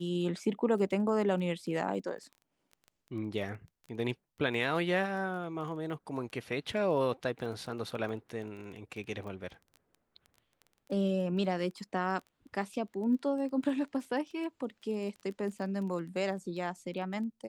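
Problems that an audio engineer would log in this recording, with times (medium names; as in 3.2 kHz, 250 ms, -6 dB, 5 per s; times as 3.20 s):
crackle 14 per s -41 dBFS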